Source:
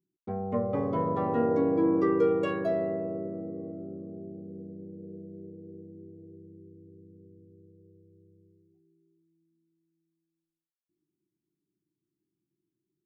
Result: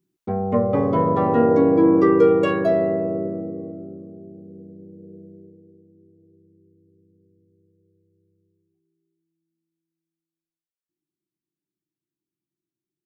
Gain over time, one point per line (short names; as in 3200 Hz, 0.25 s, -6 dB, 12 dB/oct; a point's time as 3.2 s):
3.25 s +9.5 dB
4.18 s +1 dB
5.28 s +1 dB
5.8 s -7 dB